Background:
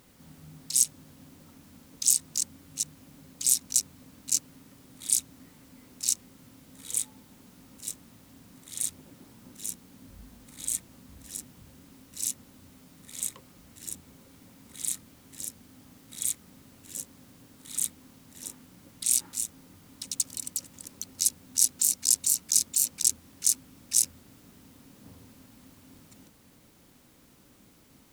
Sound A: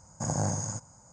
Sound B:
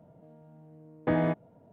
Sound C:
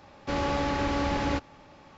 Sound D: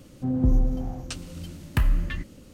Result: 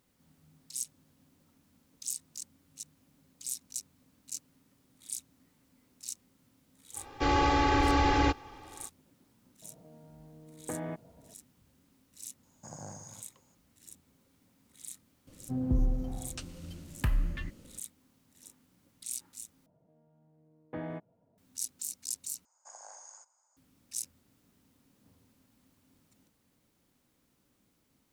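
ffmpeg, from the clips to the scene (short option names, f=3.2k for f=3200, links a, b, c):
-filter_complex "[2:a]asplit=2[a][b];[1:a]asplit=2[c][d];[0:a]volume=-14dB[e];[3:a]aecho=1:1:2.5:0.98[f];[a]acompressor=threshold=-33dB:ratio=6:attack=3.2:release=140:knee=1:detection=peak[g];[c]highpass=f=160:p=1[h];[d]highpass=f=700:w=0.5412,highpass=f=700:w=1.3066[i];[e]asplit=3[j][k][l];[j]atrim=end=19.664[m];[b]atrim=end=1.72,asetpts=PTS-STARTPTS,volume=-13dB[n];[k]atrim=start=21.376:end=22.454[o];[i]atrim=end=1.12,asetpts=PTS-STARTPTS,volume=-15dB[p];[l]atrim=start=23.566[q];[f]atrim=end=1.97,asetpts=PTS-STARTPTS,volume=-0.5dB,afade=t=in:d=0.05,afade=t=out:st=1.92:d=0.05,adelay=6930[r];[g]atrim=end=1.72,asetpts=PTS-STARTPTS,volume=-1dB,afade=t=in:d=0.004:c=hsin,afade=t=out:st=1.716:d=0.004:c=hsin,adelay=424242S[s];[h]atrim=end=1.12,asetpts=PTS-STARTPTS,volume=-14dB,afade=t=in:d=0.004:c=hsin,afade=t=out:st=1.116:d=0.004:c=hsin,adelay=12430[t];[4:a]atrim=end=2.53,asetpts=PTS-STARTPTS,volume=-7dB,afade=t=in:d=0.004:c=hsin,afade=t=out:st=2.526:d=0.004:c=hsin,adelay=15270[u];[m][n]acrossfade=d=0.004:c1=hsin:c2=hsin[v];[v][o]acrossfade=d=0.004:c1=hsin:c2=hsin[w];[w][p]acrossfade=d=0.004:c1=hsin:c2=hsin[x];[x][q]acrossfade=d=0.004:c1=hsin:c2=hsin[y];[y][r][s][t][u]amix=inputs=5:normalize=0"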